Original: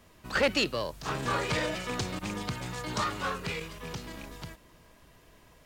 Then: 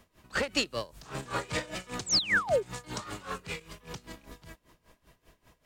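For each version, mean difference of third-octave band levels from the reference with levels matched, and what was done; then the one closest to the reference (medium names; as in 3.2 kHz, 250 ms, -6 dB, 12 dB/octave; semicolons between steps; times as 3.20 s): 7.0 dB: dynamic bell 8.1 kHz, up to +6 dB, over -55 dBFS, Q 1.5; painted sound fall, 2.06–2.63 s, 360–8400 Hz -22 dBFS; logarithmic tremolo 5.1 Hz, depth 18 dB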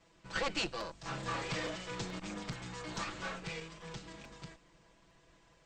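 4.5 dB: comb filter that takes the minimum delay 6 ms; steep low-pass 8.4 kHz 96 dB/octave; crackling interface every 0.43 s, samples 256, repeat, from 0.80 s; trim -5.5 dB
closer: second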